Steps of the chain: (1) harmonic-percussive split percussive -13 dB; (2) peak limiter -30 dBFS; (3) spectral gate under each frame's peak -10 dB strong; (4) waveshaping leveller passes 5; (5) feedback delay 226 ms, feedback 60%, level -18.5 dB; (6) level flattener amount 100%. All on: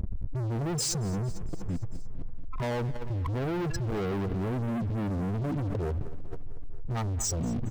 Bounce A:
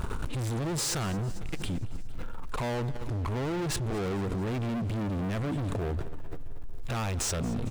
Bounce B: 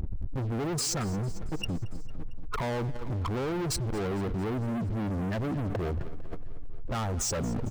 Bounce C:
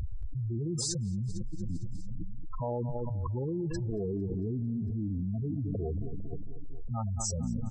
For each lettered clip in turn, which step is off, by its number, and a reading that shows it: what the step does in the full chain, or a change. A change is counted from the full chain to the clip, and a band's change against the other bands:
3, 2 kHz band +4.0 dB; 1, 125 Hz band -3.0 dB; 4, crest factor change +3.0 dB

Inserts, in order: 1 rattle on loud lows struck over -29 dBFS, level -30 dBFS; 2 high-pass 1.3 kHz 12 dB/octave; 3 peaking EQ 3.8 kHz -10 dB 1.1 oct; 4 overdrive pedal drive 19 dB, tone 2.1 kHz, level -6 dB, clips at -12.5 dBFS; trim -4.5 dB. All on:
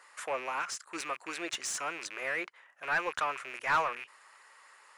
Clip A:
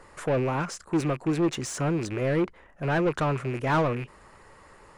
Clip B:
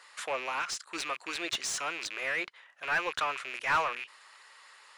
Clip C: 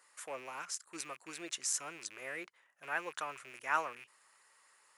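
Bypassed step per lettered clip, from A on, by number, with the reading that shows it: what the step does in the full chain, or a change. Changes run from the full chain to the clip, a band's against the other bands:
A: 2, 125 Hz band +28.5 dB; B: 3, 4 kHz band +5.0 dB; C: 4, crest factor change +7.0 dB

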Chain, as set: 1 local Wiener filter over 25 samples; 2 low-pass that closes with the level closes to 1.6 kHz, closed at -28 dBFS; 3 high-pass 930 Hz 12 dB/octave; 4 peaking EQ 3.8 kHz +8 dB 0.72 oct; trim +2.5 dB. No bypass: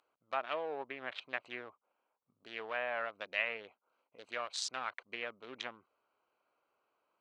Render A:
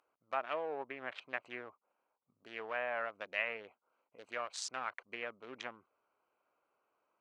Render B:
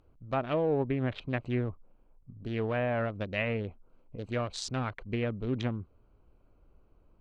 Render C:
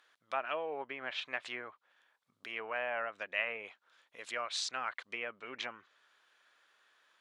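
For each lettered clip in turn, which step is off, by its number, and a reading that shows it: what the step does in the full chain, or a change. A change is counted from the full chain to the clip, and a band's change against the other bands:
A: 4, 4 kHz band -4.5 dB; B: 3, 250 Hz band +21.5 dB; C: 1, 4 kHz band +2.0 dB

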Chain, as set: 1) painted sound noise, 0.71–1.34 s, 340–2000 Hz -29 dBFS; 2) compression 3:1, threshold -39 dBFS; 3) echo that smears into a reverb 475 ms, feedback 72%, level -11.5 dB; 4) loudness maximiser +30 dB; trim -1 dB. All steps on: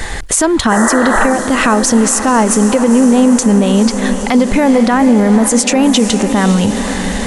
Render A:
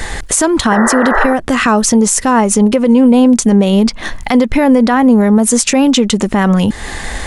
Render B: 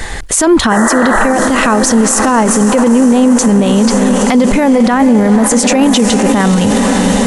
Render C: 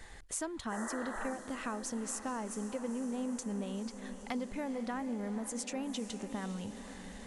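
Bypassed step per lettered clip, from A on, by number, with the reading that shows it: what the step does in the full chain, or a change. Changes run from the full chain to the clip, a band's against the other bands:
3, momentary loudness spread change +1 LU; 2, mean gain reduction 10.0 dB; 4, crest factor change +8.0 dB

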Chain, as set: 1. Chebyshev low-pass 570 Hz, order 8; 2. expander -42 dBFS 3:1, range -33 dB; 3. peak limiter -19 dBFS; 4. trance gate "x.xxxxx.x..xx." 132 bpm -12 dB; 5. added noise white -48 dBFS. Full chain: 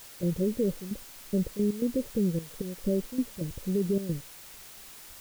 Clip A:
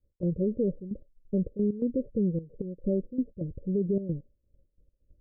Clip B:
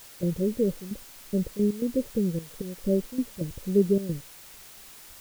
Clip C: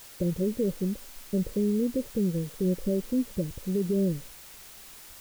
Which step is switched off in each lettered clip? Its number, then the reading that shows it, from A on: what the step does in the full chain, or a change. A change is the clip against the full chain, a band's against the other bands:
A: 5, momentary loudness spread change -7 LU; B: 3, crest factor change +6.0 dB; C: 4, 8 kHz band -1.5 dB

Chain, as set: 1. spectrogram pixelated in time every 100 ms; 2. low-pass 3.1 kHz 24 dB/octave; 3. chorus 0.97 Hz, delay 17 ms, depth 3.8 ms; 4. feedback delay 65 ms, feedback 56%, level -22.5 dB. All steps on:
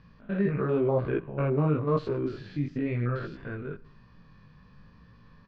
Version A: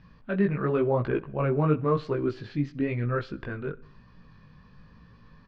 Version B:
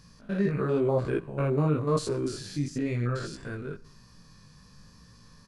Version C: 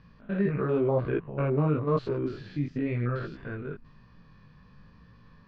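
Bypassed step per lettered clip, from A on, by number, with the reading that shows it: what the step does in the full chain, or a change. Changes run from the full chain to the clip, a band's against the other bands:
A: 1, 125 Hz band -2.5 dB; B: 2, 4 kHz band +10.0 dB; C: 4, echo-to-direct -21.0 dB to none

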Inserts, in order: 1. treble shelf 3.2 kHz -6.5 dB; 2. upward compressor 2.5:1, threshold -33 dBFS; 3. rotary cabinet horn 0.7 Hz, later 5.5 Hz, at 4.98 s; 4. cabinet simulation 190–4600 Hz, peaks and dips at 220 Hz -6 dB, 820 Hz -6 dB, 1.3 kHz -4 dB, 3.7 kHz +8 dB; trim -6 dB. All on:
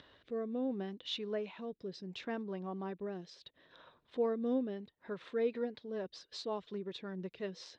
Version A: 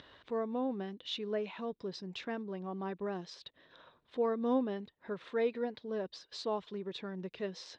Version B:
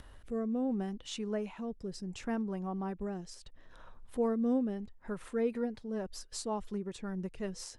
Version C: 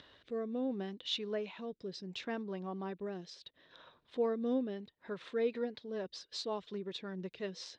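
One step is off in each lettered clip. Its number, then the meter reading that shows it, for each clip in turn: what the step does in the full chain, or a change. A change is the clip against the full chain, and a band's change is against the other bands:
3, 1 kHz band +4.0 dB; 4, crest factor change -1.5 dB; 1, 4 kHz band +3.0 dB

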